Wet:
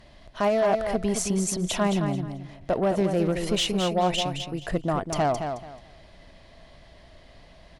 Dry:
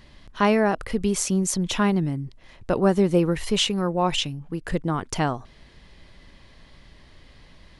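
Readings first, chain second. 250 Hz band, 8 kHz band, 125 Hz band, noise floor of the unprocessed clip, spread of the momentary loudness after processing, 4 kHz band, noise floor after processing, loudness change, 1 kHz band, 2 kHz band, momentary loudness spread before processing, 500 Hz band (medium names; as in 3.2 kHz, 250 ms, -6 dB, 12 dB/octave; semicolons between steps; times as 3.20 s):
-3.5 dB, -2.0 dB, -3.0 dB, -52 dBFS, 9 LU, -2.0 dB, -52 dBFS, -2.0 dB, -0.5 dB, -4.0 dB, 10 LU, 0.0 dB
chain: peaking EQ 660 Hz +14 dB 0.36 oct; peak limiter -11.5 dBFS, peak gain reduction 7.5 dB; Chebyshev shaper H 5 -22 dB, 7 -33 dB, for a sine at -11.5 dBFS; feedback delay 217 ms, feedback 23%, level -7 dB; trim -4 dB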